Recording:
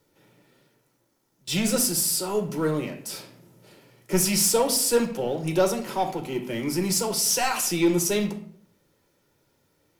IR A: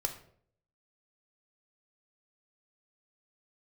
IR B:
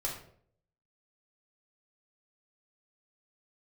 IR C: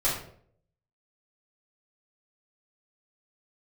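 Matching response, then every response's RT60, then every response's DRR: A; 0.60, 0.60, 0.60 s; 4.5, -3.5, -10.0 dB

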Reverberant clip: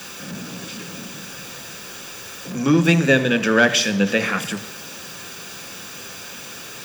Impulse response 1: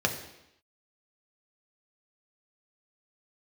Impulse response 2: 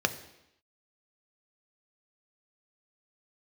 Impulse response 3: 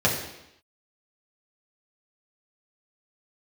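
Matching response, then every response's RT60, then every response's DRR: 2; 0.85, 0.85, 0.85 s; 2.5, 8.0, -4.5 dB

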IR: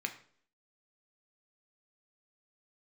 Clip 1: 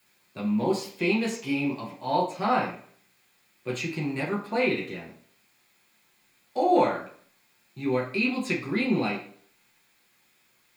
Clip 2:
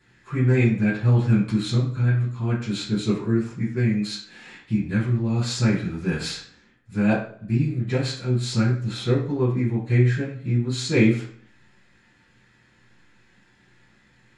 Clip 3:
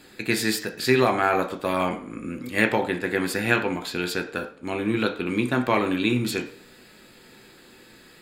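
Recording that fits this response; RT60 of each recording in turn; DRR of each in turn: 3; 0.55, 0.55, 0.55 s; -4.0, -10.0, 4.5 dB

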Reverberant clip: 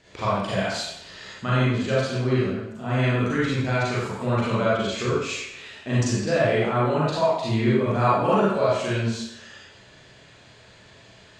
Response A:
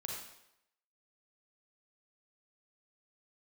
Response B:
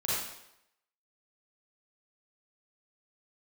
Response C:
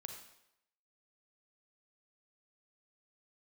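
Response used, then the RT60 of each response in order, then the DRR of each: B; 0.80, 0.80, 0.80 s; -1.5, -8.5, 3.5 dB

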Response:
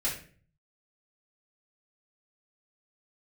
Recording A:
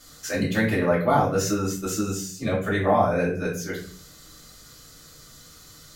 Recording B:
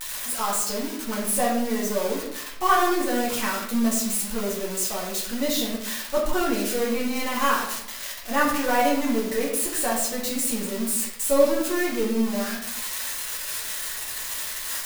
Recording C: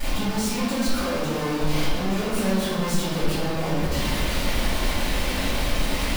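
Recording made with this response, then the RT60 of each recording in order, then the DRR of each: A; 0.45, 0.80, 1.7 s; -7.5, -6.0, -15.0 dB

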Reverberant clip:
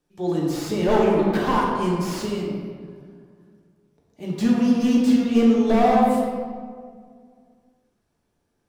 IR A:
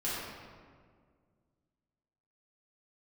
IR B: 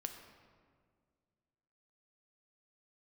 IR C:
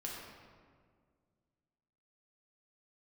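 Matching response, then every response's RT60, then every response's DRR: C; 1.9, 1.9, 1.9 s; -10.0, 5.0, -4.0 dB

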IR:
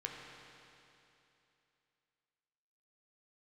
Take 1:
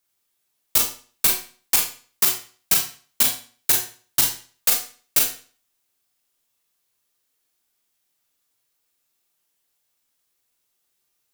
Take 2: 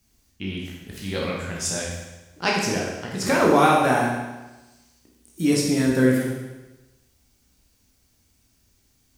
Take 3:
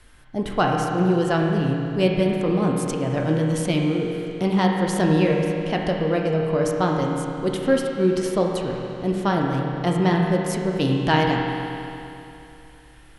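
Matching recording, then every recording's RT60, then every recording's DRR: 3; 0.40, 1.1, 2.9 s; -0.5, -3.5, -1.0 dB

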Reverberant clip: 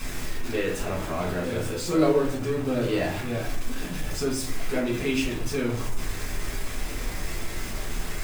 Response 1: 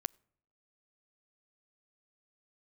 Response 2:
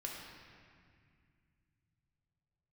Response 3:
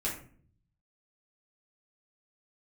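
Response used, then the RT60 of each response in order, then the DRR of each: 3; 0.70, 2.1, 0.50 s; 26.5, -2.5, -5.5 dB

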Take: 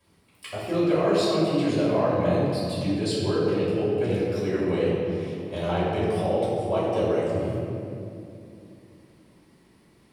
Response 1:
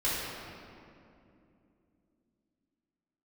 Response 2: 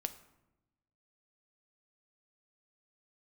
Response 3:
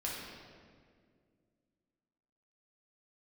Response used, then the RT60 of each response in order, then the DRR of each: 1; 2.7, 0.95, 2.0 s; -10.5, 9.0, -5.0 dB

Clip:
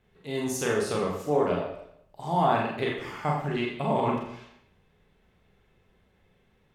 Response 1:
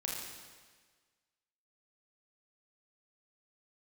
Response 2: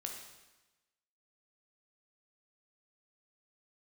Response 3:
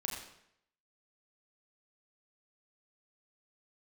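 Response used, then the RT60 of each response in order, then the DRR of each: 3; 1.5, 1.1, 0.75 s; -3.0, 1.0, -2.5 dB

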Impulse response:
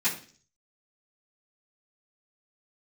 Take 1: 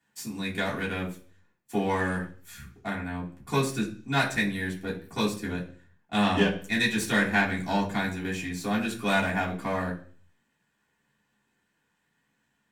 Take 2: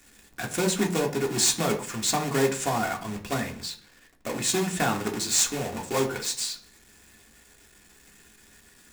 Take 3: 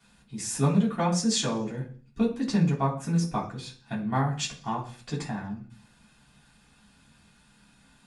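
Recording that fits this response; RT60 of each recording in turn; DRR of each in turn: 3; 0.45, 0.45, 0.45 s; -7.5, 1.0, -13.5 dB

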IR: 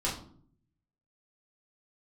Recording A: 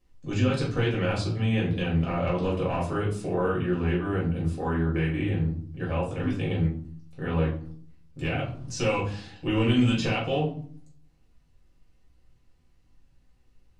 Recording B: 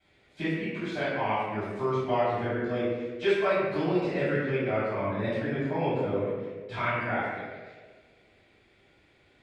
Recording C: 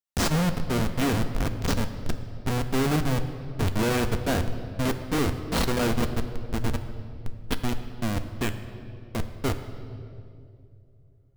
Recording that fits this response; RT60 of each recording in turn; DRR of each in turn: A; 0.55, 1.5, 2.5 s; -6.5, -14.5, 7.5 dB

